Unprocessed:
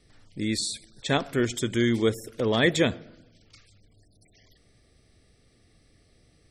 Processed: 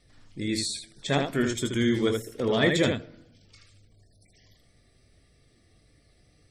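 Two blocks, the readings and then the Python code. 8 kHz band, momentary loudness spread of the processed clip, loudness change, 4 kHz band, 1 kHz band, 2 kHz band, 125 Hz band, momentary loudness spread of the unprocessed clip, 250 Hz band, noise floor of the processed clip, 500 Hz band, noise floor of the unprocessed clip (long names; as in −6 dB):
−1.0 dB, 9 LU, −0.5 dB, −0.5 dB, −1.0 dB, −1.0 dB, −0.5 dB, 11 LU, 0.0 dB, −63 dBFS, −0.5 dB, −62 dBFS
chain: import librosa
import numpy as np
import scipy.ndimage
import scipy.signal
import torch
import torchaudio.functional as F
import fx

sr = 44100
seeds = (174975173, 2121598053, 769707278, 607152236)

y = fx.spec_quant(x, sr, step_db=15)
y = fx.room_early_taps(y, sr, ms=(21, 79), db=(-9.0, -5.0))
y = y * librosa.db_to_amplitude(-1.5)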